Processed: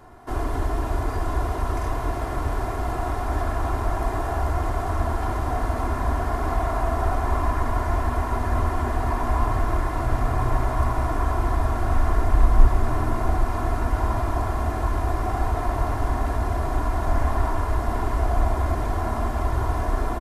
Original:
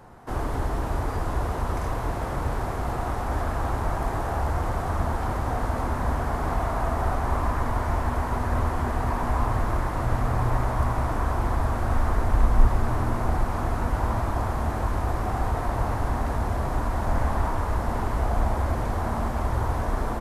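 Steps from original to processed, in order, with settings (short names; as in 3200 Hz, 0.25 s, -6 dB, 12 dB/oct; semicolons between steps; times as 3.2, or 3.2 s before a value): comb 2.9 ms, depth 56%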